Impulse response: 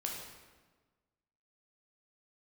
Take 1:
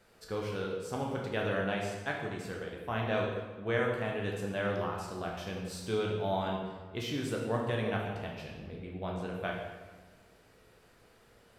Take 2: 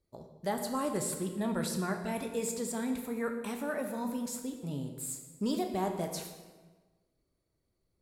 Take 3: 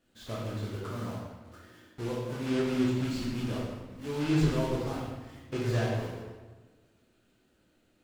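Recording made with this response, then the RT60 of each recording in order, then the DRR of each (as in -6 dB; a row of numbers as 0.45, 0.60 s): 1; 1.4, 1.4, 1.4 s; -1.5, 4.0, -5.5 dB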